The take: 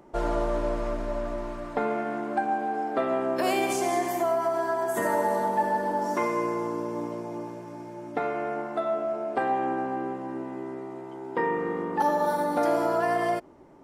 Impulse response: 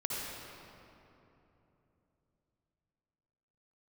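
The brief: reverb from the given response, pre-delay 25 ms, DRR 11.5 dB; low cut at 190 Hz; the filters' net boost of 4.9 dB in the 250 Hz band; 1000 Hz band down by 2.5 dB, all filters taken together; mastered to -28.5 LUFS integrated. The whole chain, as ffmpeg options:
-filter_complex "[0:a]highpass=190,equalizer=f=250:t=o:g=8,equalizer=f=1k:t=o:g=-4,asplit=2[a][b];[1:a]atrim=start_sample=2205,adelay=25[c];[b][c]afir=irnorm=-1:irlink=0,volume=-16dB[d];[a][d]amix=inputs=2:normalize=0,volume=-1dB"

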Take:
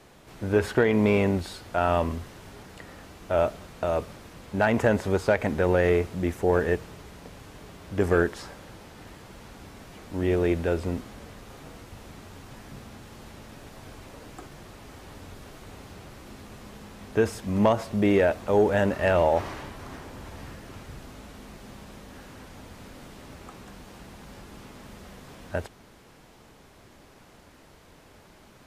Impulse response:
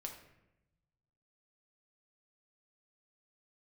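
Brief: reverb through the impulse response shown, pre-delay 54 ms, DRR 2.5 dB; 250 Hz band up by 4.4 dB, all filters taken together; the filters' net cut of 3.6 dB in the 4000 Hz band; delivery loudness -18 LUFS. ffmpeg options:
-filter_complex "[0:a]equalizer=f=250:t=o:g=6,equalizer=f=4k:t=o:g=-5,asplit=2[a][b];[1:a]atrim=start_sample=2205,adelay=54[c];[b][c]afir=irnorm=-1:irlink=0,volume=0.5dB[d];[a][d]amix=inputs=2:normalize=0,volume=3.5dB"

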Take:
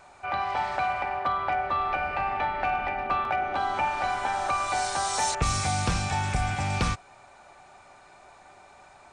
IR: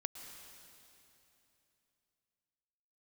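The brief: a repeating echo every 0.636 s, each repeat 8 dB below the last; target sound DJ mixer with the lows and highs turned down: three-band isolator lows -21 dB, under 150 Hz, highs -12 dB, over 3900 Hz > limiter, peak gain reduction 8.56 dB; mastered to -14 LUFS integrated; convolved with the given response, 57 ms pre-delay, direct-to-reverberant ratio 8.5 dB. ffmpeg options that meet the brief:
-filter_complex "[0:a]aecho=1:1:636|1272|1908|2544|3180:0.398|0.159|0.0637|0.0255|0.0102,asplit=2[a][b];[1:a]atrim=start_sample=2205,adelay=57[c];[b][c]afir=irnorm=-1:irlink=0,volume=-7dB[d];[a][d]amix=inputs=2:normalize=0,acrossover=split=150 3900:gain=0.0891 1 0.251[e][f][g];[e][f][g]amix=inputs=3:normalize=0,volume=17dB,alimiter=limit=-6dB:level=0:latency=1"

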